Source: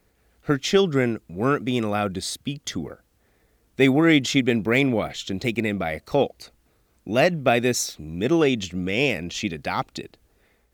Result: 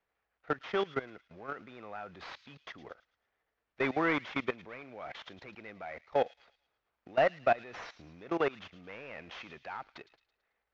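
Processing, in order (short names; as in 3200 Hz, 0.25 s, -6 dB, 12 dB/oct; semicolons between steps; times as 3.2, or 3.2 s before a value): CVSD 32 kbps; level quantiser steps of 19 dB; three-band isolator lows -16 dB, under 570 Hz, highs -20 dB, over 2500 Hz; on a send: thin delay 0.11 s, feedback 44%, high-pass 3400 Hz, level -10.5 dB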